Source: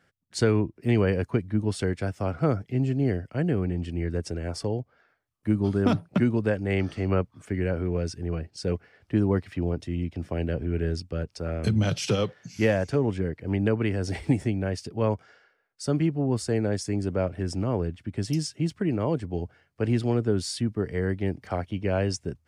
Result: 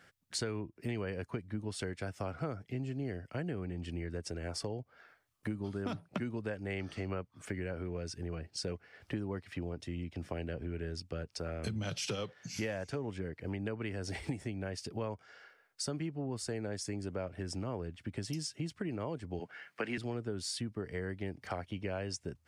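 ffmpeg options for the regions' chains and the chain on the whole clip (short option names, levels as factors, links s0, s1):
-filter_complex "[0:a]asettb=1/sr,asplit=3[s0][s1][s2];[s0]atrim=end=19.404[s3];[s1]atrim=start=19.4:end=19.98,asetpts=PTS-STARTPTS,afade=t=in:d=0.004:c=qsin,afade=t=out:st=0.576:d=0.004:c=qsin,highpass=f=160:w=0.5412,highpass=f=160:w=1.3066,equalizer=f=1900:w=0.73:g=11.5[s4];[s2]atrim=start=19.976[s5];[s3][s4]acrossfade=d=0.004:c1=hsin:c2=qsin[s6];[s6][s5]acrossfade=d=0.004:c1=qsin:c2=hsin,tiltshelf=f=660:g=-3,acompressor=threshold=0.00891:ratio=4,volume=1.5"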